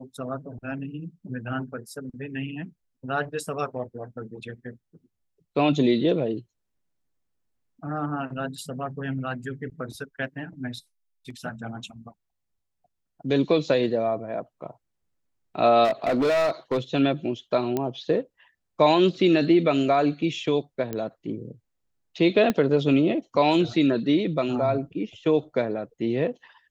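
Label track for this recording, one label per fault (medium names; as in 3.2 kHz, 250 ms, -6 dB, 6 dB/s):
15.840000	16.780000	clipped -19 dBFS
17.770000	17.770000	pop -13 dBFS
20.930000	20.930000	pop -17 dBFS
22.500000	22.500000	pop -10 dBFS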